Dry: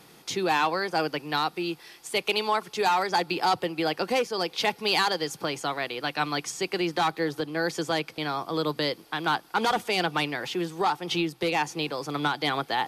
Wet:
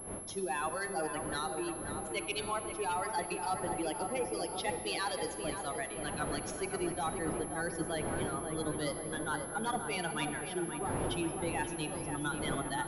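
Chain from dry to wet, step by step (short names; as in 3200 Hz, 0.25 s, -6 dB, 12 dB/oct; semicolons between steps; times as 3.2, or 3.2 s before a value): per-bin expansion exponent 2; wind noise 540 Hz -40 dBFS; reverse; compressor, threshold -31 dBFS, peak gain reduction 10 dB; reverse; darkening echo 0.53 s, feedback 70%, low-pass 1700 Hz, level -6 dB; on a send at -9 dB: reverb RT60 3.0 s, pre-delay 28 ms; on the sum: pulse-width modulation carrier 11000 Hz; gain -1.5 dB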